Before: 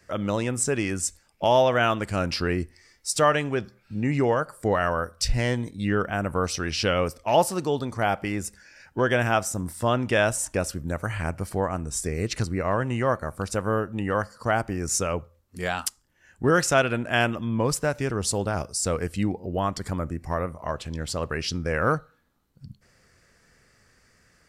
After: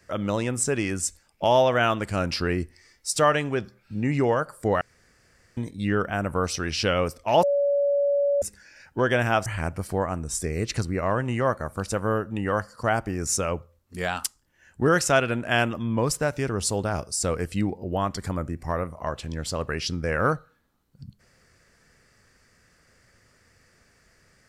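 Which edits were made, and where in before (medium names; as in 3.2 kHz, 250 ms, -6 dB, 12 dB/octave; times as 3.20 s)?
4.81–5.57 s: room tone
7.43–8.42 s: bleep 568 Hz -19 dBFS
9.46–11.08 s: delete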